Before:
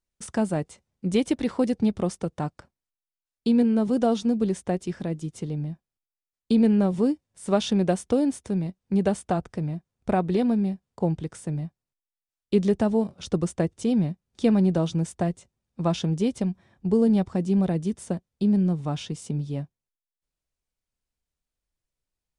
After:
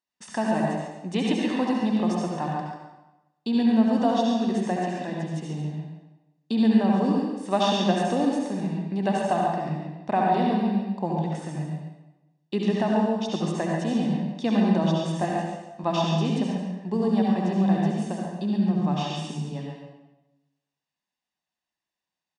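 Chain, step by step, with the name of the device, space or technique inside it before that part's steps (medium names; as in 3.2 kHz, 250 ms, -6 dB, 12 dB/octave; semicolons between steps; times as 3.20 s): supermarket ceiling speaker (band-pass 310–5200 Hz; reverberation RT60 1.0 s, pre-delay 63 ms, DRR -2 dB); comb 1.1 ms, depth 56%; 15.20–15.84 s: doubling 20 ms -3 dB; delay 139 ms -9 dB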